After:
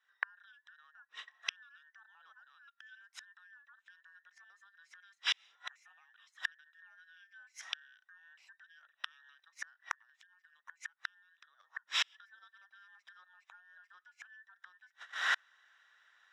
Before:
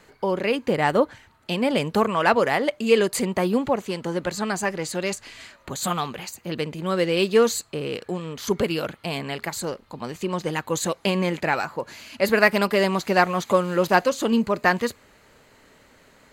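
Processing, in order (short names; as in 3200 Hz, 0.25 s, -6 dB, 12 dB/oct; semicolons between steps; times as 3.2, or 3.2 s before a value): band inversion scrambler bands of 2000 Hz; recorder AGC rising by 53 dB/s; HPF 1400 Hz 12 dB/oct; gate -39 dBFS, range -26 dB; LPF 2200 Hz 12 dB/oct; tilt +3 dB/oct; 9.87–11.96 compressor 6:1, threshold -24 dBFS, peak gain reduction 8.5 dB; flipped gate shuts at -20 dBFS, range -42 dB; gain +2.5 dB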